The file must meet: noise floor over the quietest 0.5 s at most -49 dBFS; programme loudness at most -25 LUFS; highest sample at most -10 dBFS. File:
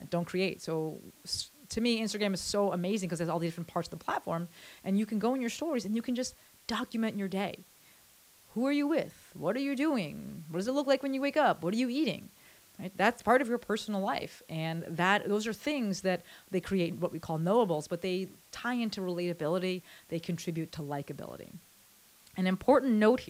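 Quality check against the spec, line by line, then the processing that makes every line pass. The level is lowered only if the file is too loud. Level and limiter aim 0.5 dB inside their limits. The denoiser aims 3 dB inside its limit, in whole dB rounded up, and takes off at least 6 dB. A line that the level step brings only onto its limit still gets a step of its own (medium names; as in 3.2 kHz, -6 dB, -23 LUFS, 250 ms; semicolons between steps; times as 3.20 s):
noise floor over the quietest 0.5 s -61 dBFS: pass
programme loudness -32.0 LUFS: pass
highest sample -11.5 dBFS: pass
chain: none needed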